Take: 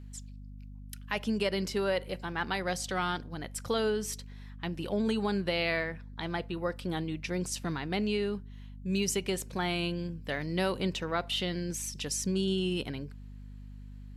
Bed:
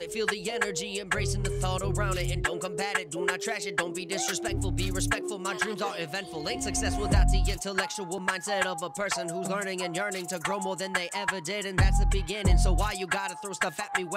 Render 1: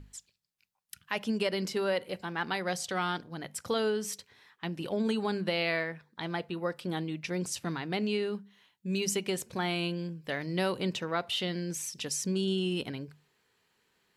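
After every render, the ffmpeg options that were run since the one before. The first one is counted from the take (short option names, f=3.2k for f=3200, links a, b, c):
-af "bandreject=f=50:t=h:w=6,bandreject=f=100:t=h:w=6,bandreject=f=150:t=h:w=6,bandreject=f=200:t=h:w=6,bandreject=f=250:t=h:w=6"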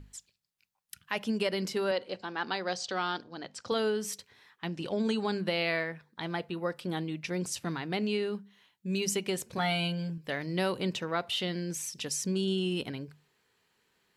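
-filter_complex "[0:a]asettb=1/sr,asplit=3[a][b][c];[a]atrim=end=1.914[d];[b]atrim=start=1.91:end=3.72,asetpts=PTS-STARTPTS,afade=t=in:d=0.004:c=qsin,afade=t=out:st=1.806:d=0.004:c=qsin,highpass=120,equalizer=f=160:t=q:w=4:g=-10,equalizer=f=2.1k:t=q:w=4:g=-5,equalizer=f=4.5k:t=q:w=4:g=5,lowpass=f=6.7k:w=0.5412,lowpass=f=6.7k:w=1.3066[e];[c]atrim=start=3.716[f];[d][e]acrossfade=d=0.004:c1=hsin:c2=qsin[g];[g][f]acrossfade=d=0.004:c1=qsin:c2=hsin,asettb=1/sr,asplit=3[h][i][j];[h]atrim=end=4.674[k];[i]atrim=start=4.67:end=5.39,asetpts=PTS-STARTPTS,afade=t=in:d=0.004:c=qsin,afade=t=out:st=0.716:d=0.004:c=qsin,lowpass=f=6.8k:t=q:w=1.6[l];[j]atrim=start=5.386[m];[k][l]acrossfade=d=0.004:c1=hsin:c2=qsin[n];[n][m]acrossfade=d=0.004:c1=qsin:c2=hsin,asettb=1/sr,asplit=3[o][p][q];[o]atrim=end=9.574[r];[p]atrim=start=9.57:end=10.18,asetpts=PTS-STARTPTS,afade=t=in:d=0.004:c=qsin,afade=t=out:st=0.606:d=0.004:c=qsin,aecho=1:1:7.1:0.84,atrim=end_sample=26901[s];[q]atrim=start=10.176[t];[r][s]acrossfade=d=0.004:c1=hsin:c2=qsin[u];[u][t]acrossfade=d=0.004:c1=qsin:c2=hsin"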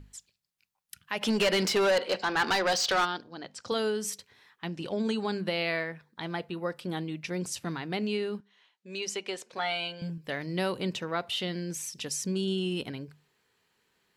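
-filter_complex "[0:a]asplit=3[a][b][c];[a]afade=t=out:st=1.21:d=0.02[d];[b]asplit=2[e][f];[f]highpass=f=720:p=1,volume=22dB,asoftclip=type=tanh:threshold=-17dB[g];[e][g]amix=inputs=2:normalize=0,lowpass=f=5.9k:p=1,volume=-6dB,afade=t=in:st=1.21:d=0.02,afade=t=out:st=3.04:d=0.02[h];[c]afade=t=in:st=3.04:d=0.02[i];[d][h][i]amix=inputs=3:normalize=0,asettb=1/sr,asplit=3[j][k][l];[j]atrim=end=3.634[m];[k]atrim=start=3.63:end=4.1,asetpts=PTS-STARTPTS,afade=t=in:d=0.004:c=qsin,afade=t=out:st=0.466:d=0.004:c=qsin,equalizer=f=8.3k:w=0.77:g=5.5[n];[l]atrim=start=4.096[o];[m][n]acrossfade=d=0.004:c1=hsin:c2=qsin[p];[p][o]acrossfade=d=0.004:c1=qsin:c2=hsin,asettb=1/sr,asplit=3[q][r][s];[q]atrim=end=8.404[t];[r]atrim=start=8.4:end=10.02,asetpts=PTS-STARTPTS,afade=t=in:d=0.004:c=qsin,afade=t=out:st=1.616:d=0.004:c=qsin,highpass=430,lowpass=6.2k[u];[s]atrim=start=10.016[v];[t][u]acrossfade=d=0.004:c1=hsin:c2=qsin[w];[w][v]acrossfade=d=0.004:c1=qsin:c2=hsin"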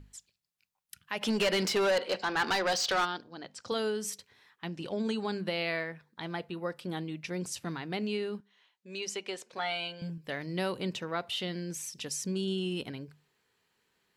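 -af "volume=-2.5dB"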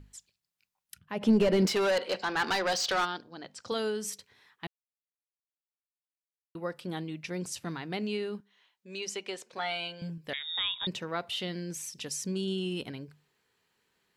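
-filter_complex "[0:a]asplit=3[a][b][c];[a]afade=t=out:st=0.97:d=0.02[d];[b]tiltshelf=f=810:g=9.5,afade=t=in:st=0.97:d=0.02,afade=t=out:st=1.66:d=0.02[e];[c]afade=t=in:st=1.66:d=0.02[f];[d][e][f]amix=inputs=3:normalize=0,asettb=1/sr,asplit=3[g][h][i];[g]atrim=end=10.334[j];[h]atrim=start=10.33:end=10.87,asetpts=PTS-STARTPTS,afade=t=in:d=0.004:c=qsin,afade=t=out:st=0.536:d=0.004:c=qsin,lowpass=f=3.3k:t=q:w=0.5098,lowpass=f=3.3k:t=q:w=0.6013,lowpass=f=3.3k:t=q:w=0.9,lowpass=f=3.3k:t=q:w=2.563,afreqshift=-3900[k];[i]atrim=start=10.866[l];[j][k]acrossfade=d=0.004:c1=hsin:c2=qsin[m];[m][l]acrossfade=d=0.004:c1=qsin:c2=hsin,asplit=3[n][o][p];[n]atrim=end=4.67,asetpts=PTS-STARTPTS,afade=t=out:st=4.666:d=0.004:c=hsin[q];[o]atrim=start=4.67:end=6.55,asetpts=PTS-STARTPTS,volume=0[r];[p]atrim=start=6.55,asetpts=PTS-STARTPTS,afade=t=in:d=0.004:c=hsin[s];[q][r][s]concat=n=3:v=0:a=1"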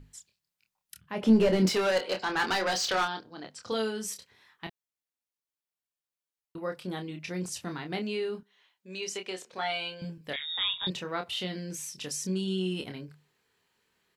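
-filter_complex "[0:a]asplit=2[a][b];[b]adelay=27,volume=-6dB[c];[a][c]amix=inputs=2:normalize=0"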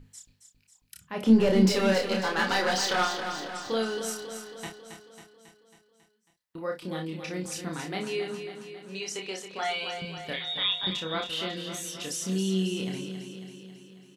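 -filter_complex "[0:a]asplit=2[a][b];[b]adelay=31,volume=-5dB[c];[a][c]amix=inputs=2:normalize=0,asplit=2[d][e];[e]aecho=0:1:273|546|819|1092|1365|1638|1911|2184:0.376|0.226|0.135|0.0812|0.0487|0.0292|0.0175|0.0105[f];[d][f]amix=inputs=2:normalize=0"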